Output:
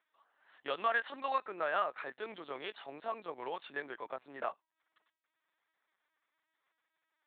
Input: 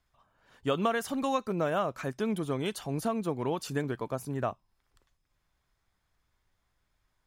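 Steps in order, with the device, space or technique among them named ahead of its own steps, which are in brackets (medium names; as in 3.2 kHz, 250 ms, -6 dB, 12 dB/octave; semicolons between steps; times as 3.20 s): 0.73–1.97 s: dynamic bell 1.6 kHz, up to +4 dB, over -41 dBFS, Q 1; talking toy (LPC vocoder at 8 kHz pitch kept; high-pass 600 Hz 12 dB/octave; peaking EQ 1.8 kHz +4.5 dB 0.44 oct); trim -3.5 dB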